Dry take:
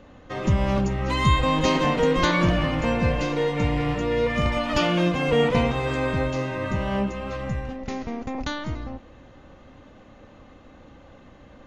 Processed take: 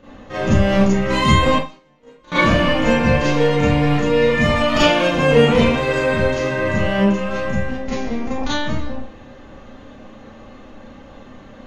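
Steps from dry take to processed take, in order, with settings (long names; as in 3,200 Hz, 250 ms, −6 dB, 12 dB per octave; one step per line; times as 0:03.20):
0:01.54–0:02.32: noise gate −14 dBFS, range −42 dB
four-comb reverb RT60 0.31 s, combs from 28 ms, DRR −9 dB
level −1 dB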